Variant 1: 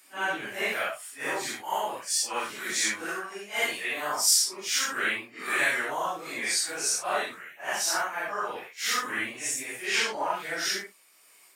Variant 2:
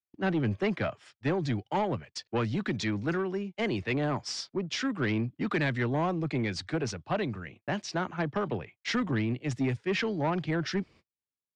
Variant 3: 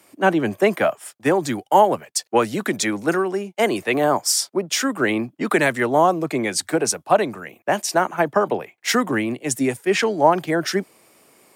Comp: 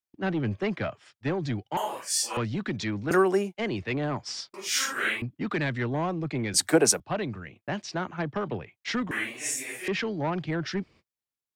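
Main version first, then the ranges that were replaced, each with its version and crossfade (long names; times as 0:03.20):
2
0:01.77–0:02.37: punch in from 1
0:03.11–0:03.54: punch in from 3
0:04.54–0:05.22: punch in from 1
0:06.54–0:07.00: punch in from 3
0:09.11–0:09.88: punch in from 1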